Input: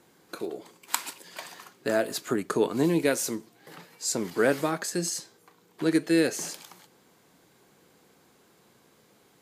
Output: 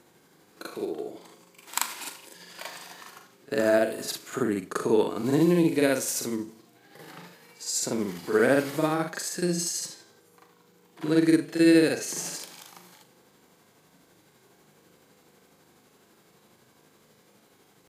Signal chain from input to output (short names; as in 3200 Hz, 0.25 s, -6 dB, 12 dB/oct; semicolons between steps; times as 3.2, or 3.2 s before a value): harmonic-percussive split percussive -4 dB; granular stretch 1.9×, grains 0.167 s; gain +4 dB